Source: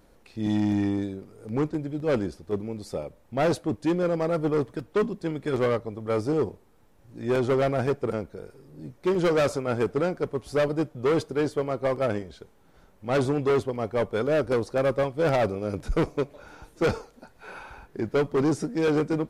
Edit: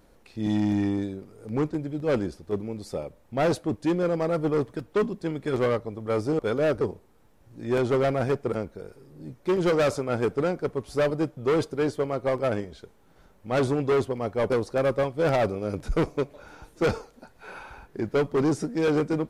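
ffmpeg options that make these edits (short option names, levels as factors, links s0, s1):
-filter_complex "[0:a]asplit=4[s0][s1][s2][s3];[s0]atrim=end=6.392[s4];[s1]atrim=start=14.078:end=14.502[s5];[s2]atrim=start=6.388:end=14.082[s6];[s3]atrim=start=14.498[s7];[s4][s5]acrossfade=d=0.004:c1=hsin:c2=hsin[s8];[s8][s6]acrossfade=d=0.004:c1=hsin:c2=hsin[s9];[s9][s7]acrossfade=d=0.004:c1=hsin:c2=hsin"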